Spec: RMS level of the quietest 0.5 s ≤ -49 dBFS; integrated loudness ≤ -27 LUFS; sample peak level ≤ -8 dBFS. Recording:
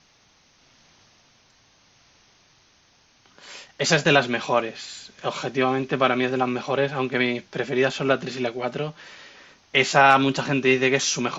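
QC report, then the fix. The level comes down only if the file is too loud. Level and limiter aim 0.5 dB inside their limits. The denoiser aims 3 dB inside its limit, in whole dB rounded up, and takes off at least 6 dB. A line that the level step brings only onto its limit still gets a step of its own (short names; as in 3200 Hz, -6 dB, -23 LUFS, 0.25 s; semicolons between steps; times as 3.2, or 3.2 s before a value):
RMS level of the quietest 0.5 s -59 dBFS: OK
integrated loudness -22.0 LUFS: fail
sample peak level -4.5 dBFS: fail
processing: gain -5.5 dB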